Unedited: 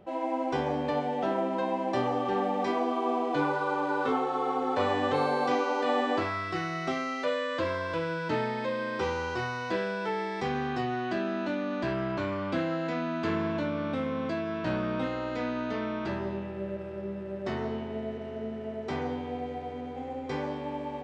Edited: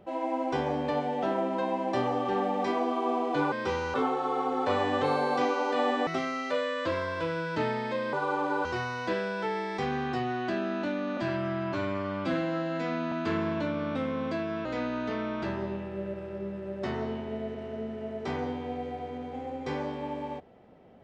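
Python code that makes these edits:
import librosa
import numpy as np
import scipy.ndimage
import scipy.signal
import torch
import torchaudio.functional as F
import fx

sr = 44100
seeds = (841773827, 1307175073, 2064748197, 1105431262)

y = fx.edit(x, sr, fx.swap(start_s=3.52, length_s=0.52, other_s=8.86, other_length_s=0.42),
    fx.cut(start_s=6.17, length_s=0.63),
    fx.stretch_span(start_s=11.8, length_s=1.3, factor=1.5),
    fx.cut(start_s=14.63, length_s=0.65), tone=tone)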